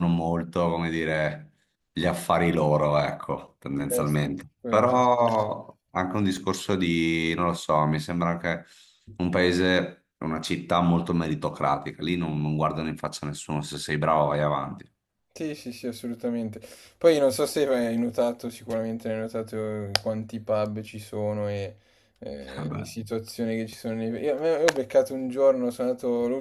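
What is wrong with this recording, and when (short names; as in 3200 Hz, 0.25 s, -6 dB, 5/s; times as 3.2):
6.37 gap 2.8 ms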